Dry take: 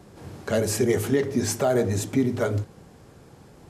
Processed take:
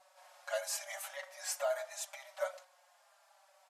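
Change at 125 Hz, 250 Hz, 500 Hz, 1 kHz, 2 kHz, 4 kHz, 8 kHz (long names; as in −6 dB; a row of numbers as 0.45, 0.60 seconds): below −40 dB, below −40 dB, −15.0 dB, −11.0 dB, −9.5 dB, −9.0 dB, −9.0 dB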